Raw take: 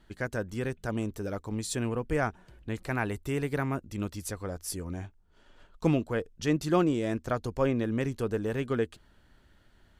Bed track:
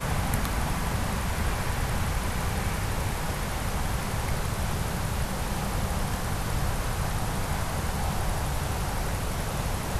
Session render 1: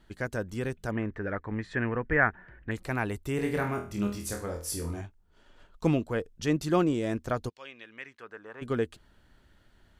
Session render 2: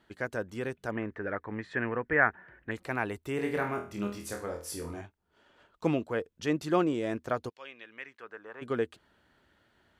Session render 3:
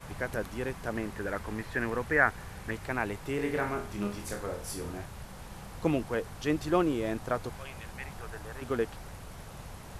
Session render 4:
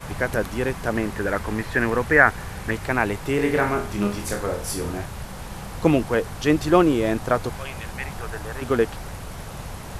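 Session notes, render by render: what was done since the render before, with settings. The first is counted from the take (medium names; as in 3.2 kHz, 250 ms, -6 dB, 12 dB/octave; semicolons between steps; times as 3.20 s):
0.91–2.71 s: resonant low-pass 1.8 kHz, resonance Q 5.6; 3.36–5.01 s: flutter echo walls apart 4.2 m, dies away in 0.38 s; 7.48–8.61 s: band-pass filter 3.9 kHz -> 1.1 kHz, Q 2.1
high-pass 74 Hz; tone controls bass -7 dB, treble -6 dB
add bed track -15.5 dB
trim +10 dB; peak limiter -1 dBFS, peak gain reduction 2 dB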